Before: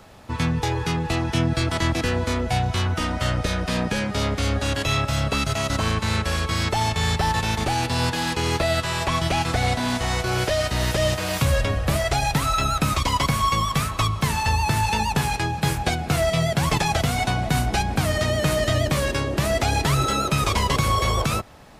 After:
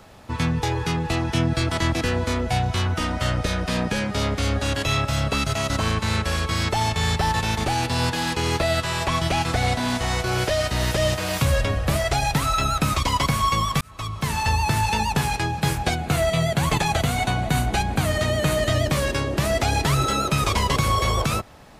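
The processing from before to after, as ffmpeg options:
-filter_complex "[0:a]asettb=1/sr,asplit=3[a][b][c];[a]atrim=end=15.964[d];[b]atrim=start=15.96:end=18.7,asetpts=PTS-STARTPTS,afade=t=in:d=0.004:c=qsin,afade=t=out:st=2.736:d=0.004:c=qsin,bandreject=f=5.3k:w=6.1[e];[c]atrim=start=18.696[f];[d][e]acrossfade=d=0.004:c1=hsin:c2=qsin[g];[g][f]acrossfade=d=0.004:c1=qsin:c2=hsin,asplit=2[h][i];[h]atrim=end=13.81,asetpts=PTS-STARTPTS,afade=t=out:st=13.806:d=0.004:c=hsin[j];[i]atrim=start=13.81,asetpts=PTS-STARTPTS,afade=t=in:d=0.61[k];[j][k]concat=n=2:v=0:a=1"

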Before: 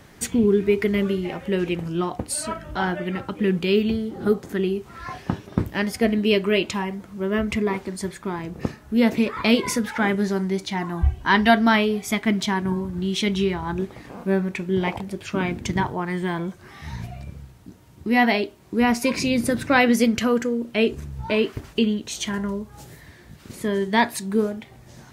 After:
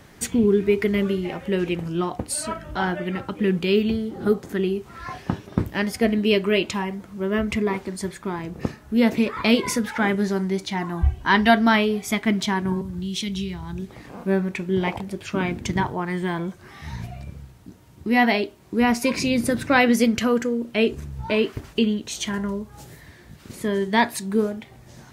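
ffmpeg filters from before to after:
-filter_complex "[0:a]asettb=1/sr,asplit=3[a][b][c];[a]atrim=end=12.814[d];[b]atrim=start=12.81:end=14.13,asetpts=PTS-STARTPTS,afade=t=in:d=0.004:c=qsin,afade=t=out:st=1.316:d=0.004:c=qsin,acrossover=split=200|3000[e][f][g];[f]acompressor=threshold=-38dB:ratio=6:attack=3.2:release=140:knee=2.83:detection=peak[h];[e][h][g]amix=inputs=3:normalize=0[i];[c]atrim=start=14.126[j];[d][i]acrossfade=d=0.004:c1=hsin:c2=qsin[k];[k][j]acrossfade=d=0.004:c1=qsin:c2=hsin"

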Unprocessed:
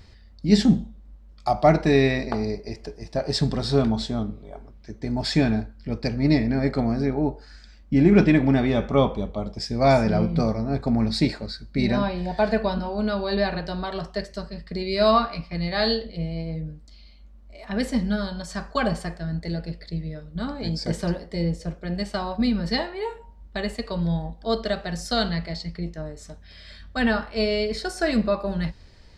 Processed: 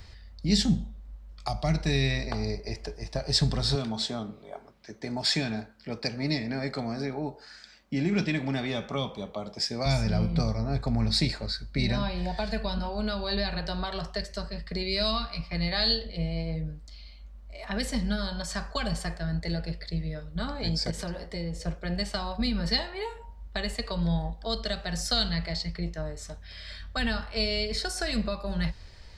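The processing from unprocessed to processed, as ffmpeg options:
-filter_complex "[0:a]asettb=1/sr,asplit=3[a][b][c];[a]atrim=end=3.754[d];[b]atrim=start=3.75:end=9.86,asetpts=PTS-STARTPTS,afade=t=in:d=0.004:c=qsin,afade=t=out:st=6.106:d=0.004:c=qsin,highpass=200[e];[c]atrim=start=9.856[f];[d][e]acrossfade=d=0.004:c1=hsin:c2=qsin[g];[g][f]acrossfade=d=0.004:c1=qsin:c2=hsin,asettb=1/sr,asplit=3[h][i][j];[h]atrim=end=20.904[k];[i]atrim=start=20.9:end=21.56,asetpts=PTS-STARTPTS,afade=t=in:d=0.004:c=qsin,afade=t=out:st=0.656:d=0.004:c=qsin,acompressor=threshold=-30dB:ratio=3:attack=3.2:release=140:knee=1:detection=peak[l];[j]atrim=start=21.556[m];[k][l]acrossfade=d=0.004:c1=hsin:c2=qsin[n];[n][m]acrossfade=d=0.004:c1=qsin:c2=hsin,equalizer=f=260:t=o:w=1.8:g=-8,acrossover=split=210|3000[o][p][q];[p]acompressor=threshold=-35dB:ratio=6[r];[o][r][q]amix=inputs=3:normalize=0,volume=3dB"

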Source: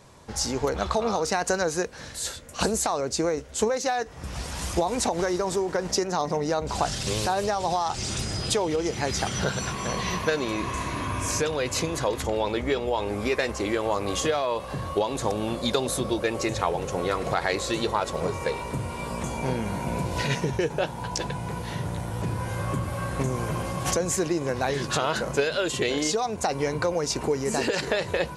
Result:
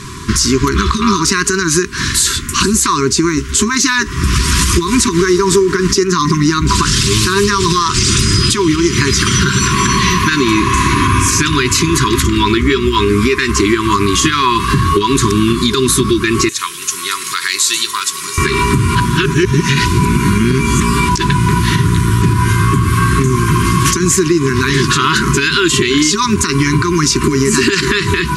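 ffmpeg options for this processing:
-filter_complex "[0:a]asettb=1/sr,asplit=3[a][b][c];[a]atrim=end=16.494[d];[b]atrim=start=16.49:end=18.38,asetpts=PTS-STARTPTS,afade=t=in:d=0.004:c=qsin,afade=t=out:st=1.886:d=0.004:c=qsin,aderivative[e];[c]atrim=start=18.376[f];[d][e]acrossfade=d=0.004:c1=hsin:c2=qsin[g];[g][f]acrossfade=d=0.004:c1=qsin:c2=hsin,asplit=3[h][i][j];[h]atrim=end=18.952[k];[i]atrim=start=18.948:end=21.092,asetpts=PTS-STARTPTS,areverse[l];[j]atrim=start=21.088[m];[k][l]acrossfade=d=0.004:c1=hsin:c2=hsin[n];[n][m]acrossfade=d=0.004:c1=hsin:c2=hsin,afftfilt=real='re*(1-between(b*sr/4096,410,960))':imag='im*(1-between(b*sr/4096,410,960))':win_size=4096:overlap=0.75,acompressor=threshold=-33dB:ratio=6,alimiter=level_in=26dB:limit=-1dB:release=50:level=0:latency=1,volume=-1dB"

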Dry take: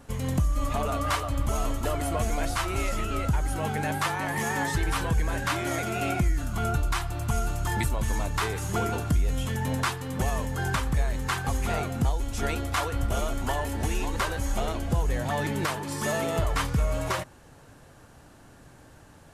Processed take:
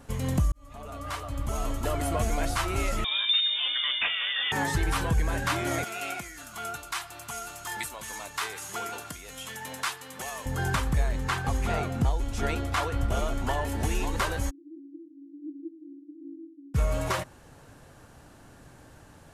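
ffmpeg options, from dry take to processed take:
-filter_complex "[0:a]asettb=1/sr,asplit=3[a][b][c];[a]atrim=end=3.044[d];[b]atrim=start=3.04:end=4.52,asetpts=PTS-STARTPTS,afade=t=in:d=0.004:c=qsin,afade=t=out:st=1.476:d=0.004:c=qsin,lowpass=f=3.1k:t=q:w=0.5098,lowpass=f=3.1k:t=q:w=0.6013,lowpass=f=3.1k:t=q:w=0.9,lowpass=f=3.1k:t=q:w=2.563,afreqshift=-3700[e];[c]atrim=start=4.516[f];[d][e]acrossfade=d=0.004:c1=hsin:c2=qsin[g];[g][f]acrossfade=d=0.004:c1=qsin:c2=hsin,asettb=1/sr,asplit=3[h][i][j];[h]atrim=end=5.844[k];[i]atrim=start=5.84:end=10.46,asetpts=PTS-STARTPTS,afade=t=in:d=0.004:c=qsin,afade=t=out:st=4.616:d=0.004:c=qsin,highpass=f=1.4k:p=1[l];[j]atrim=start=10.456[m];[k][l]acrossfade=d=0.004:c1=hsin:c2=qsin[n];[n][m]acrossfade=d=0.004:c1=qsin:c2=hsin,asettb=1/sr,asplit=3[o][p][q];[o]atrim=end=11.084[r];[p]atrim=start=11.08:end=13.68,asetpts=PTS-STARTPTS,afade=t=in:d=0.004:c=qsin,afade=t=out:st=2.596:d=0.004:c=qsin,highshelf=f=7.4k:g=-7.5[s];[q]atrim=start=13.676[t];[r][s]acrossfade=d=0.004:c1=hsin:c2=qsin[u];[u][t]acrossfade=d=0.004:c1=qsin:c2=hsin,asplit=3[v][w][x];[v]afade=t=out:st=14.49:d=0.02[y];[w]asuperpass=centerf=310:order=12:qfactor=5.3,afade=t=in:st=14.49:d=0.02,afade=t=out:st=16.74:d=0.02[z];[x]afade=t=in:st=16.74:d=0.02[aa];[y][z][aa]amix=inputs=3:normalize=0,asplit=2[ab][ac];[ab]atrim=end=0.52,asetpts=PTS-STARTPTS,afade=t=out:st=0.516:d=0.004:c=hsin[ad];[ac]atrim=start=0.52,asetpts=PTS-STARTPTS,afade=t=in:d=1.51[ae];[ad][ae]concat=n=2:v=0:a=1"

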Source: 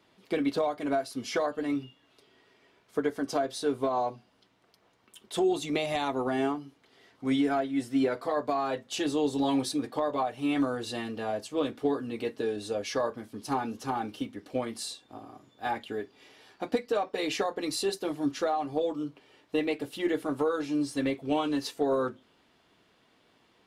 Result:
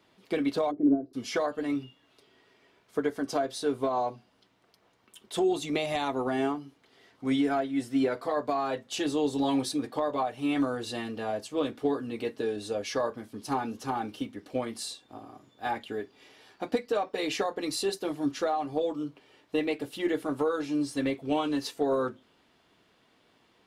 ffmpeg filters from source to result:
-filter_complex "[0:a]asplit=3[a][b][c];[a]afade=t=out:st=0.7:d=0.02[d];[b]lowpass=f=320:t=q:w=3.8,afade=t=in:st=0.7:d=0.02,afade=t=out:st=1.13:d=0.02[e];[c]afade=t=in:st=1.13:d=0.02[f];[d][e][f]amix=inputs=3:normalize=0"

